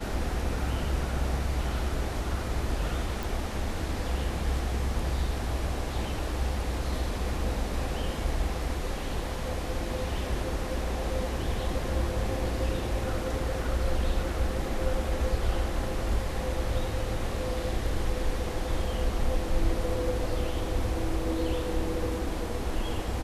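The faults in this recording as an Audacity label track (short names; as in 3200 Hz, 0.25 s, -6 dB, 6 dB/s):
3.230000	3.230000	pop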